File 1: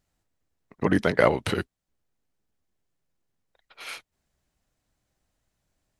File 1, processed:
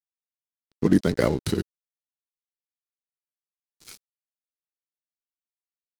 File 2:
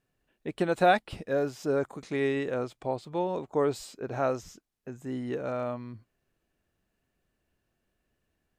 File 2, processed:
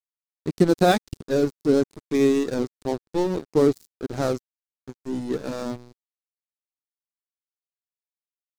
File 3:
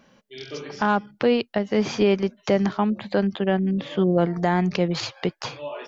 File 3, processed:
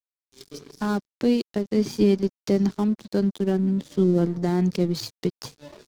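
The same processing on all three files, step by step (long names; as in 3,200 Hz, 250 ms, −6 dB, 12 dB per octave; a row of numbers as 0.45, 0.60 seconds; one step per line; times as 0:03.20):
spectral magnitudes quantised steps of 15 dB
dead-zone distortion −36.5 dBFS
flat-topped bell 1,300 Hz −11.5 dB 2.9 octaves
loudness normalisation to −24 LKFS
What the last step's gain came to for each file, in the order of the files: +6.0, +14.0, +2.5 decibels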